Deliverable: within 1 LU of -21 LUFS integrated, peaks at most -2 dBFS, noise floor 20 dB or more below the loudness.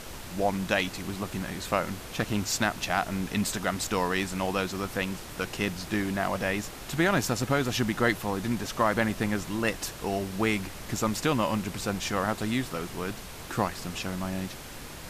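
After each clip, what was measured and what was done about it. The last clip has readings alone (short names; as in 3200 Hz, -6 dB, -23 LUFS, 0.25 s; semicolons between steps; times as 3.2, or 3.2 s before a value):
noise floor -42 dBFS; noise floor target -50 dBFS; loudness -29.5 LUFS; peak -11.0 dBFS; loudness target -21.0 LUFS
-> noise print and reduce 8 dB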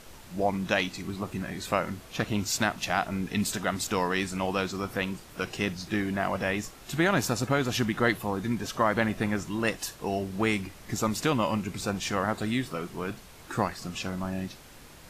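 noise floor -49 dBFS; noise floor target -50 dBFS
-> noise print and reduce 6 dB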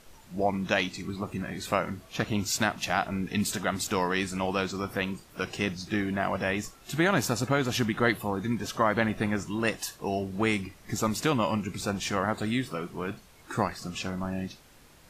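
noise floor -55 dBFS; loudness -29.5 LUFS; peak -11.5 dBFS; loudness target -21.0 LUFS
-> gain +8.5 dB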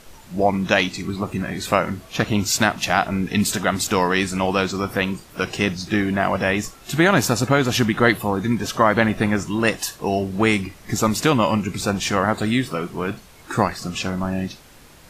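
loudness -21.0 LUFS; peak -3.0 dBFS; noise floor -46 dBFS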